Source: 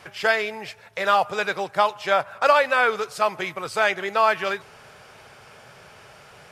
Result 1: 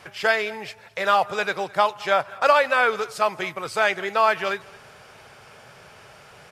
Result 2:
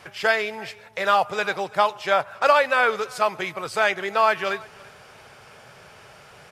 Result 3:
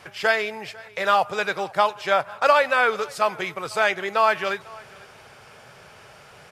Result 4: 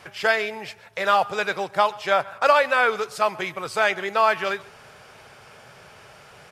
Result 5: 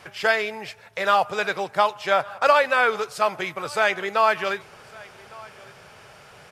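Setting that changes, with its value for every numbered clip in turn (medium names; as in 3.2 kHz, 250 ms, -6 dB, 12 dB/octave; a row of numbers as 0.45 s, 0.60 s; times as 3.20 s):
delay, time: 214 ms, 335 ms, 497 ms, 130 ms, 1156 ms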